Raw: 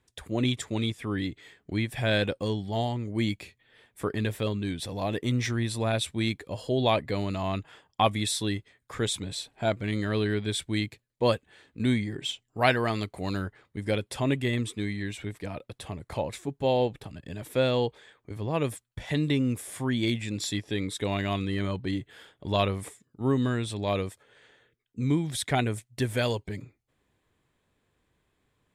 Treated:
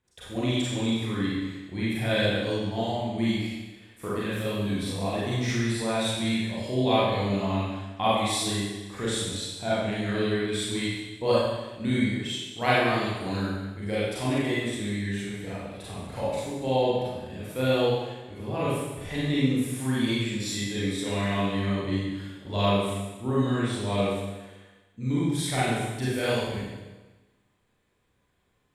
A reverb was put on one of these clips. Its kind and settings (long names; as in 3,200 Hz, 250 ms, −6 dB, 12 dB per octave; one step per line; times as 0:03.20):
four-comb reverb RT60 1.2 s, combs from 31 ms, DRR −9 dB
level −7.5 dB